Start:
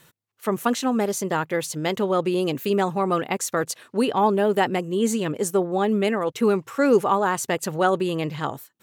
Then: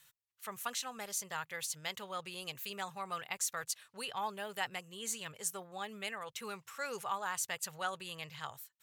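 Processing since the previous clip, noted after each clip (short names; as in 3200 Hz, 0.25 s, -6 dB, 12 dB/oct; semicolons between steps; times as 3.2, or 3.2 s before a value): passive tone stack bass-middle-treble 10-0-10; gain -6 dB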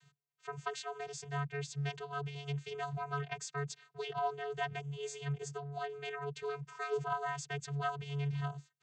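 vocoder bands 16, square 142 Hz; gain +3.5 dB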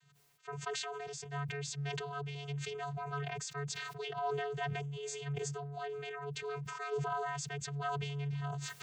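sustainer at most 21 dB/s; gain -2.5 dB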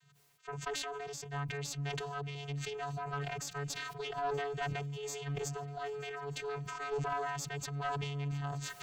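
added harmonics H 2 -14 dB, 5 -32 dB, 6 -26 dB, 8 -34 dB, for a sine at -25 dBFS; swung echo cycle 1.234 s, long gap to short 3:1, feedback 58%, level -22 dB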